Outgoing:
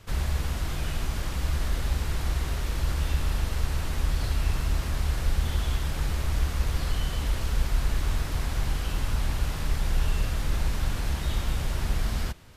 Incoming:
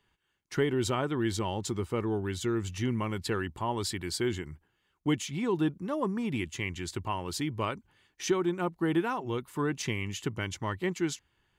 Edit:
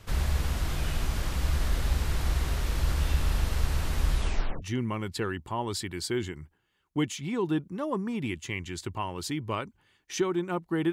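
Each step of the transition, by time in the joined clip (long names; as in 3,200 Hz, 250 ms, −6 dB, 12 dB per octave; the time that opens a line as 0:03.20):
outgoing
0:04.10: tape stop 0.52 s
0:04.62: continue with incoming from 0:02.72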